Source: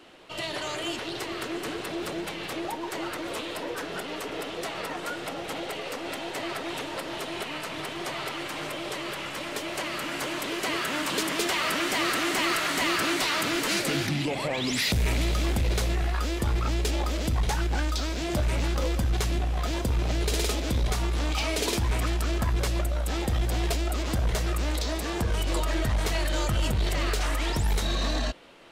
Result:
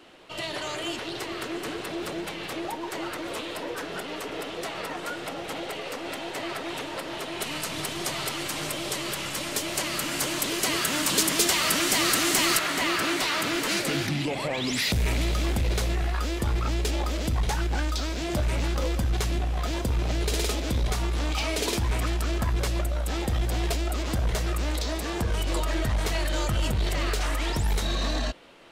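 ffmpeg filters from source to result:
ffmpeg -i in.wav -filter_complex "[0:a]asettb=1/sr,asplit=3[link_01][link_02][link_03];[link_01]atrim=end=7.414[link_04];[link_02]atrim=start=7.41:end=12.59,asetpts=PTS-STARTPTS,afade=type=in:duration=0.004:curve=qsin,afade=type=out:start_time=5.176:duration=0.004:curve=qsin,bass=frequency=250:gain=6,treble=frequency=4000:gain=11[link_05];[link_03]atrim=start=12.586[link_06];[link_04][link_05]acrossfade=duration=0.004:curve1=hsin:curve2=qsin[link_07];[link_07][link_06]acrossfade=duration=0.004:curve1=qsin:curve2=hsin" out.wav

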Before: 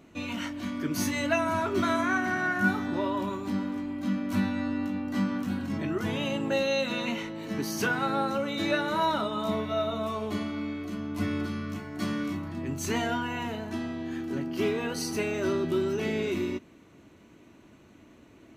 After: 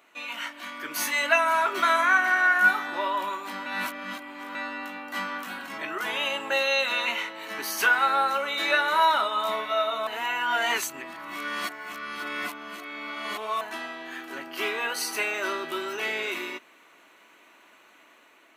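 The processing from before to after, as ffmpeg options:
ffmpeg -i in.wav -filter_complex "[0:a]asplit=5[link_01][link_02][link_03][link_04][link_05];[link_01]atrim=end=3.662[link_06];[link_02]atrim=start=3.658:end=4.552,asetpts=PTS-STARTPTS,areverse[link_07];[link_03]atrim=start=4.548:end=10.072[link_08];[link_04]atrim=start=10.068:end=13.612,asetpts=PTS-STARTPTS,areverse[link_09];[link_05]atrim=start=13.608[link_10];[link_06][link_07]acrossfade=duration=0.004:curve1=hsin:curve2=hsin[link_11];[link_11][link_08]acrossfade=duration=0.004:curve1=hsin:curve2=hsin[link_12];[link_12][link_09]acrossfade=duration=0.004:curve1=hsin:curve2=hsin[link_13];[link_13][link_10]acrossfade=duration=0.004:curve1=hsin:curve2=hsin,highpass=1000,equalizer=frequency=5700:width=1.1:gain=-7.5,dynaudnorm=framelen=320:gausssize=5:maxgain=4.5dB,volume=5.5dB" out.wav

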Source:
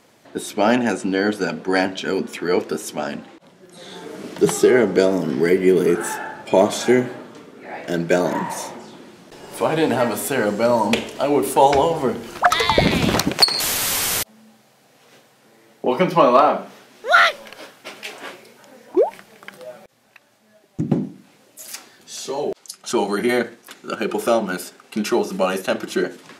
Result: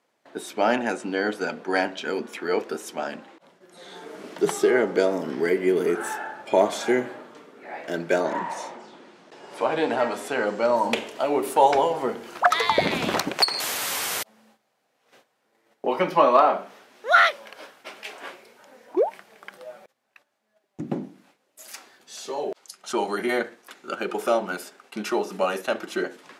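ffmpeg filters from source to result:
ffmpeg -i in.wav -filter_complex "[0:a]asettb=1/sr,asplit=3[link_01][link_02][link_03];[link_01]atrim=end=8.204[link_04];[link_02]atrim=start=8.2:end=10.76,asetpts=PTS-STARTPTS,afade=type=in:duration=0.004:curve=qsin,afade=type=out:start_time=2.556:duration=0.004:curve=qsin,highpass=110,lowpass=7300[link_05];[link_03]atrim=start=10.756[link_06];[link_04][link_05]acrossfade=duration=0.004:curve1=hsin:curve2=qsin[link_07];[link_07][link_06]acrossfade=duration=0.004:curve1=qsin:curve2=hsin,agate=range=-12dB:threshold=-50dB:ratio=16:detection=peak,highpass=frequency=650:poles=1,highshelf=frequency=2400:gain=-8.5" out.wav

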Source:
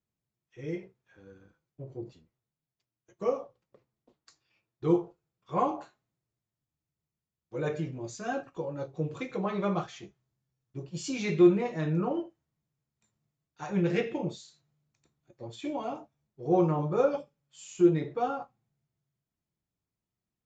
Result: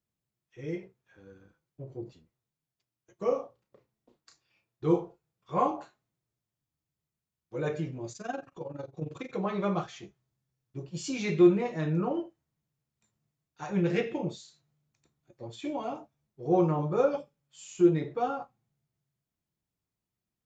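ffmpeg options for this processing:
ffmpeg -i in.wav -filter_complex "[0:a]asettb=1/sr,asplit=3[link_01][link_02][link_03];[link_01]atrim=end=3.274[link_04];[link_02]atrim=start=3.27:end=5.68,asetpts=PTS-STARTPTS,afade=type=in:duration=0.004:curve=qsin,afade=type=out:start_time=2.406:duration=0.004:curve=qsin,asplit=2[link_05][link_06];[link_06]adelay=33,volume=-7dB[link_07];[link_05][link_07]amix=inputs=2:normalize=0,atrim=end_sample=106281[link_08];[link_03]atrim=start=5.676[link_09];[link_04][link_08]acrossfade=duration=0.004:curve1=hsin:curve2=qsin[link_10];[link_10][link_09]acrossfade=duration=0.004:curve1=qsin:curve2=hsin,asettb=1/sr,asplit=3[link_11][link_12][link_13];[link_11]atrim=end=8.124[link_14];[link_12]atrim=start=8.12:end=9.33,asetpts=PTS-STARTPTS,afade=type=in:duration=0.004:curve=qsin,afade=type=out:start_time=1.206:duration=0.004:curve=qsin,tremolo=f=22:d=0.788[link_15];[link_13]atrim=start=9.326[link_16];[link_14][link_15]acrossfade=duration=0.004:curve1=hsin:curve2=qsin[link_17];[link_17][link_16]acrossfade=duration=0.004:curve1=qsin:curve2=hsin" out.wav

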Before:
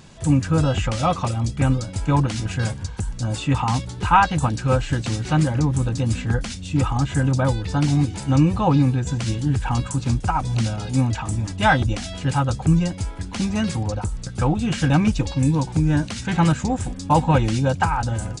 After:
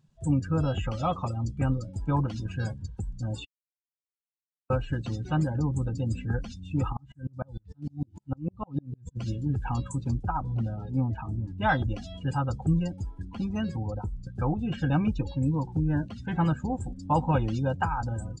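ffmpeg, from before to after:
ffmpeg -i in.wav -filter_complex "[0:a]asplit=3[link_01][link_02][link_03];[link_01]afade=type=out:start_time=6.92:duration=0.02[link_04];[link_02]aeval=exprs='val(0)*pow(10,-39*if(lt(mod(-6.6*n/s,1),2*abs(-6.6)/1000),1-mod(-6.6*n/s,1)/(2*abs(-6.6)/1000),(mod(-6.6*n/s,1)-2*abs(-6.6)/1000)/(1-2*abs(-6.6)/1000))/20)':channel_layout=same,afade=type=in:start_time=6.92:duration=0.02,afade=type=out:start_time=9.15:duration=0.02[link_05];[link_03]afade=type=in:start_time=9.15:duration=0.02[link_06];[link_04][link_05][link_06]amix=inputs=3:normalize=0,asettb=1/sr,asplit=3[link_07][link_08][link_09];[link_07]atrim=end=10.234[link_10];[link_08]atrim=start=10.23:end=11.69,asetpts=PTS-STARTPTS,afade=type=in:duration=0.004:curve=qsin,afade=type=out:start_time=1.456:duration=0.004:curve=qsin,lowpass=frequency=2300:poles=1[link_11];[link_09]atrim=start=11.686[link_12];[link_10][link_11]acrossfade=duration=0.004:curve1=hsin:curve2=qsin[link_13];[link_13][link_12]acrossfade=duration=0.004:curve1=qsin:curve2=hsin,asettb=1/sr,asplit=3[link_14][link_15][link_16];[link_14]atrim=end=13.254[link_17];[link_15]atrim=start=13.25:end=16.77,asetpts=PTS-STARTPTS,afade=type=in:duration=0.004:curve=qsin,afade=type=out:start_time=3.516:duration=0.004:curve=qsin,highshelf=frequency=5300:gain=-5.5[link_18];[link_16]atrim=start=16.766[link_19];[link_17][link_18]acrossfade=duration=0.004:curve1=hsin:curve2=qsin[link_20];[link_20][link_19]acrossfade=duration=0.004:curve1=qsin:curve2=hsin,asplit=3[link_21][link_22][link_23];[link_21]atrim=end=3.45,asetpts=PTS-STARTPTS,afade=type=out:start_time=3.446:duration=0.004:curve=hsin[link_24];[link_22]atrim=start=3.45:end=4.7,asetpts=PTS-STARTPTS,volume=0[link_25];[link_23]atrim=start=4.7,asetpts=PTS-STARTPTS,afade=type=in:duration=0.004:curve=hsin[link_26];[link_24][link_25][link_26]concat=n=3:v=0:a=1,afftdn=noise_reduction=22:noise_floor=-31,equalizer=frequency=2200:width_type=o:width=0.26:gain=-6,volume=-7.5dB" out.wav

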